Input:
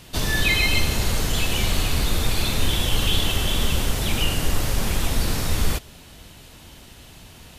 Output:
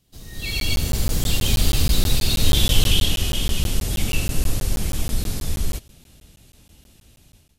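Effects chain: Doppler pass-by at 2.70 s, 22 m/s, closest 7.7 m; dynamic bell 3.9 kHz, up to +5 dB, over -41 dBFS, Q 0.89; level rider gain up to 16.5 dB; peaking EQ 1.3 kHz -10 dB 3 oct; band-stop 960 Hz, Q 27; crackling interface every 0.16 s, samples 512, zero, from 0.60 s

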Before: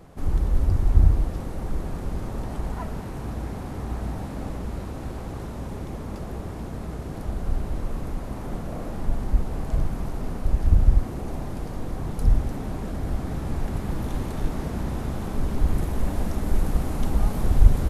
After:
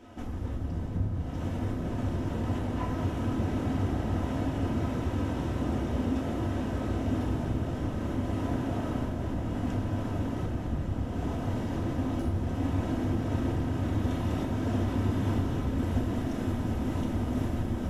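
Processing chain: comb filter that takes the minimum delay 3.1 ms; flange 0.61 Hz, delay 8.2 ms, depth 5.1 ms, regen -40%; compression 4:1, threshold -33 dBFS, peak gain reduction 16.5 dB; echo that smears into a reverb 1318 ms, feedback 62%, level -6 dB; reverberation RT60 3.5 s, pre-delay 3 ms, DRR 0.5 dB; trim -2.5 dB

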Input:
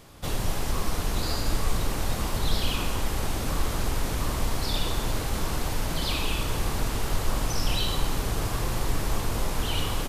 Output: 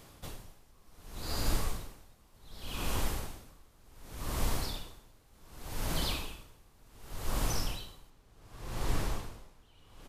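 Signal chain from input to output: treble shelf 8.8 kHz +4 dB, from 8.10 s -5.5 dB; logarithmic tremolo 0.67 Hz, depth 31 dB; trim -4 dB

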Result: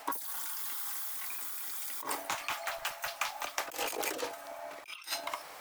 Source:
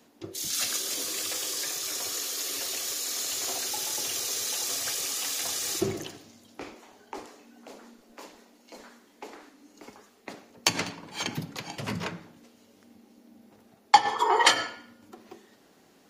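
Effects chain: wide varispeed 2.87×; compressor with a negative ratio -42 dBFS, ratio -1; trim +3 dB

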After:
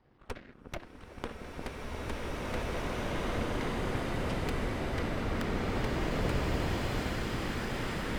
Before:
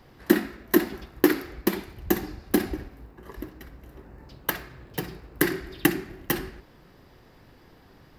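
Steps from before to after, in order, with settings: pitch shift switched off and on -5.5 st, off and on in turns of 177 ms; recorder AGC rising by 15 dB/s; dynamic bell 2.6 kHz, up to +8 dB, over -45 dBFS, Q 1.2; compression 4:1, threshold -31 dBFS, peak gain reduction 21.5 dB; Bessel low-pass 5.3 kHz, order 2; delay with an opening low-pass 177 ms, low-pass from 200 Hz, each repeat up 2 oct, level -6 dB; Chebyshev shaper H 3 -7 dB, 8 -15 dB, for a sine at -11.5 dBFS; treble shelf 3.8 kHz -10 dB; swelling reverb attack 2490 ms, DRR -11 dB; trim -4.5 dB

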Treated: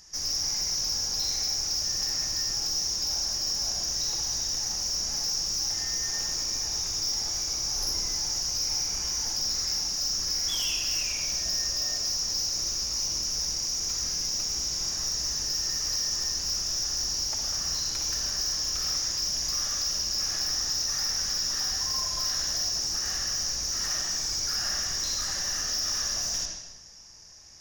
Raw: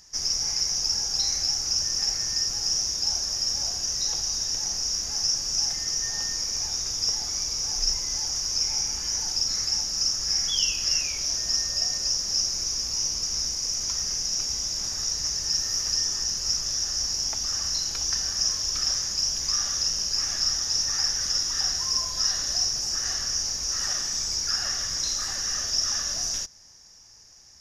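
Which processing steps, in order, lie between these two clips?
saturation -26.5 dBFS, distortion -11 dB; reverberation RT60 1.0 s, pre-delay 53 ms, DRR 1 dB

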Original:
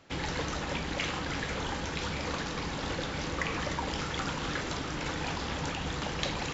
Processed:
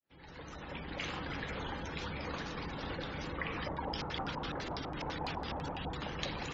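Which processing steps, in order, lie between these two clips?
fade-in on the opening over 1.16 s; spectral gate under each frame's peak -20 dB strong; 3.60–5.97 s: LFO low-pass square 6 Hz 840–5100 Hz; trim -5.5 dB

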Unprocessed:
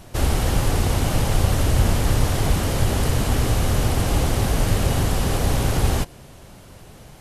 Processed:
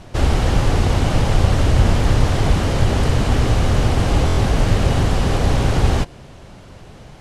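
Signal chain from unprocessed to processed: distance through air 76 m; buffer glitch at 4.26 s, samples 1024, times 4; trim +4 dB

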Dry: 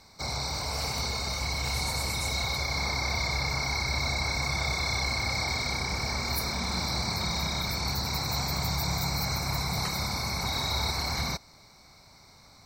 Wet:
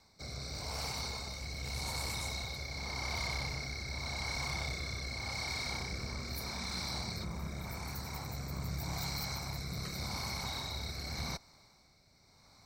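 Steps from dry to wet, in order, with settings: rotary cabinet horn 0.85 Hz; Chebyshev shaper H 3 -15 dB, 4 -19 dB, 5 -13 dB, 7 -24 dB, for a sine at -17 dBFS; 7.23–8.96 s: peaking EQ 4.2 kHz -14 dB -> -4.5 dB 1.1 oct; trim -7.5 dB

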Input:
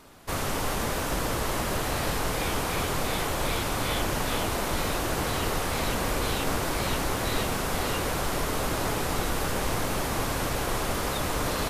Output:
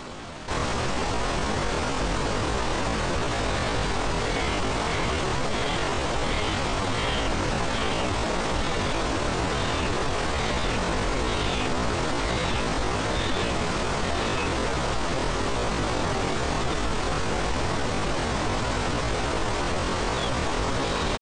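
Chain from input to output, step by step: treble shelf 3.3 kHz +4 dB; tempo 0.6×; distance through air 72 m; resampled via 22.05 kHz; speed mistake 48 kHz file played as 44.1 kHz; level flattener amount 50%

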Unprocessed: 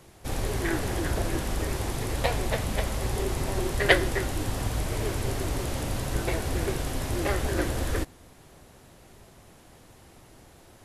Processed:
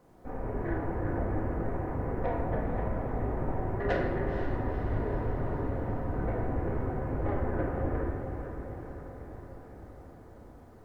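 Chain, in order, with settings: Gaussian low-pass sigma 6.6 samples; tilt EQ +1.5 dB/octave; hum notches 60/120/180 Hz; bit crusher 12-bit; saturation -22 dBFS, distortion -17 dB; echo that smears into a reverb 490 ms, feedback 64%, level -8 dB; simulated room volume 730 m³, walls mixed, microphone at 1.9 m; trim -3.5 dB

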